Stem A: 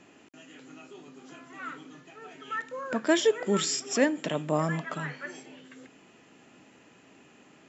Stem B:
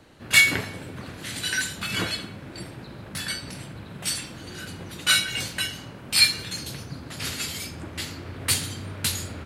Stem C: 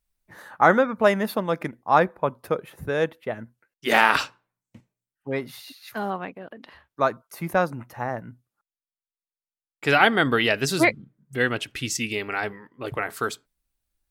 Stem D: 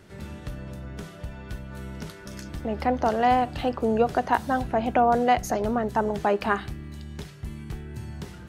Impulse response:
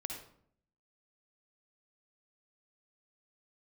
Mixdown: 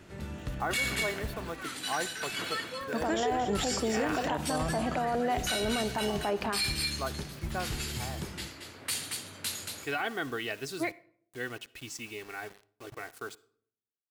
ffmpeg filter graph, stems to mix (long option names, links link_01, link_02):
-filter_complex "[0:a]volume=-3.5dB,asplit=2[link_01][link_02];[link_02]volume=-11dB[link_03];[1:a]highpass=frequency=420:poles=1,adelay=400,volume=-10.5dB,asplit=3[link_04][link_05][link_06];[link_05]volume=-5dB[link_07];[link_06]volume=-3.5dB[link_08];[2:a]aecho=1:1:2.7:0.43,acrusher=bits=5:mix=0:aa=0.000001,volume=-15.5dB,asplit=2[link_09][link_10];[link_10]volume=-16dB[link_11];[3:a]alimiter=limit=-17dB:level=0:latency=1:release=53,volume=-3.5dB,asplit=3[link_12][link_13][link_14];[link_12]atrim=end=1.5,asetpts=PTS-STARTPTS,afade=type=out:start_time=1.496:duration=0.004:curve=hsin[link_15];[link_13]atrim=start=1.5:end=3.01,asetpts=PTS-STARTPTS,volume=0[link_16];[link_14]atrim=start=3.01,asetpts=PTS-STARTPTS,afade=type=in:duration=0.004:curve=hsin[link_17];[link_15][link_16][link_17]concat=n=3:v=0:a=1,asplit=2[link_18][link_19];[link_19]volume=-10dB[link_20];[4:a]atrim=start_sample=2205[link_21];[link_07][link_11][link_20]amix=inputs=3:normalize=0[link_22];[link_22][link_21]afir=irnorm=-1:irlink=0[link_23];[link_03][link_08]amix=inputs=2:normalize=0,aecho=0:1:228:1[link_24];[link_01][link_04][link_09][link_18][link_23][link_24]amix=inputs=6:normalize=0,alimiter=limit=-21dB:level=0:latency=1:release=26"